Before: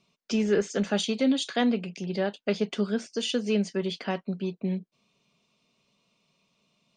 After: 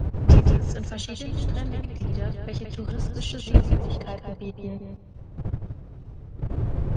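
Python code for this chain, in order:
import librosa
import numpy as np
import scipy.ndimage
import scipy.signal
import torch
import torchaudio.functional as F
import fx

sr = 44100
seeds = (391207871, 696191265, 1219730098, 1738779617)

p1 = fx.dmg_wind(x, sr, seeds[0], corner_hz=280.0, level_db=-26.0)
p2 = fx.spec_box(p1, sr, start_s=3.78, length_s=1.05, low_hz=380.0, high_hz=1100.0, gain_db=8)
p3 = fx.level_steps(p2, sr, step_db=16)
p4 = fx.low_shelf_res(p3, sr, hz=150.0, db=10.5, q=1.5)
p5 = fx.pitch_keep_formants(p4, sr, semitones=1.0)
p6 = p5 + fx.echo_feedback(p5, sr, ms=169, feedback_pct=16, wet_db=-6, dry=0)
y = F.gain(torch.from_numpy(p6), -1.0).numpy()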